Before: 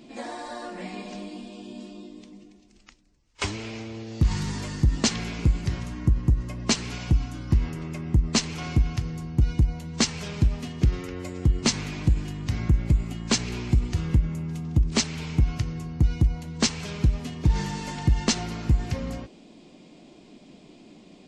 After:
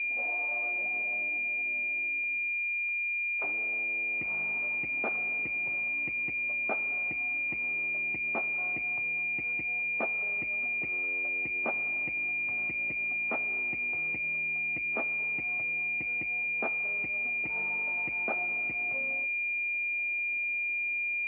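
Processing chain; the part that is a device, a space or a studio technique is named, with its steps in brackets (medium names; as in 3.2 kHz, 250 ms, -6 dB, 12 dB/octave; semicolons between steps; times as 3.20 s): toy sound module (decimation joined by straight lines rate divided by 8×; class-D stage that switches slowly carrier 2.4 kHz; cabinet simulation 550–3700 Hz, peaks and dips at 680 Hz +4 dB, 1 kHz -6 dB, 1.6 kHz -4 dB, 2.4 kHz +9 dB); trim -4.5 dB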